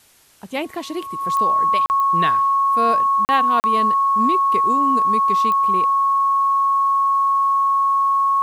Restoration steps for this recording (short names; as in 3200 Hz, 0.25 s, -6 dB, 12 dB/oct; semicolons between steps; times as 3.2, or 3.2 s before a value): de-click; notch 1100 Hz, Q 30; interpolate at 1.86/3.25/3.6, 39 ms; expander -22 dBFS, range -21 dB